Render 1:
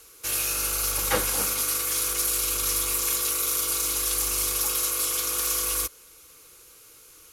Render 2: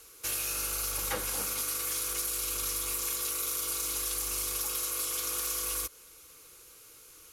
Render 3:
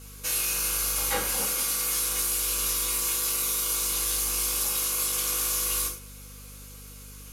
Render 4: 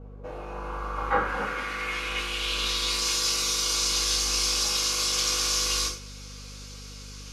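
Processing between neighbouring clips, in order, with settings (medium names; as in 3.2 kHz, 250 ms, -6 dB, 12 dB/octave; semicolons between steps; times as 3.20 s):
compression, threshold -27 dBFS, peak gain reduction 8.5 dB; trim -2.5 dB
gated-style reverb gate 150 ms falling, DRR -4.5 dB; hum 50 Hz, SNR 18 dB
low-pass sweep 660 Hz -> 5.2 kHz, 0.22–3.13 s; trim +3 dB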